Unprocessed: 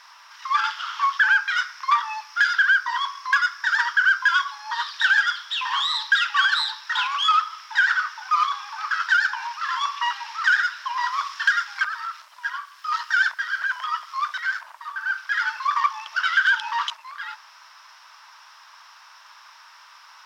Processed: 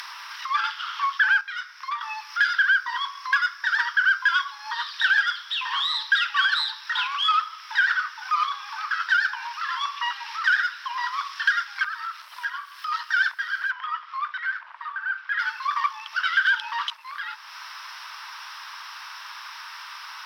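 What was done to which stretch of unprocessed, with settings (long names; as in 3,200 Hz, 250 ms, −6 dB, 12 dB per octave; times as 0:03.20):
0:01.41–0:02.01: clip gain −8 dB
0:13.71–0:15.39: band-pass filter 650–2,600 Hz
whole clip: Bessel high-pass filter 1,200 Hz, order 2; parametric band 7,000 Hz −13.5 dB 0.38 octaves; upward compression, threshold −27 dBFS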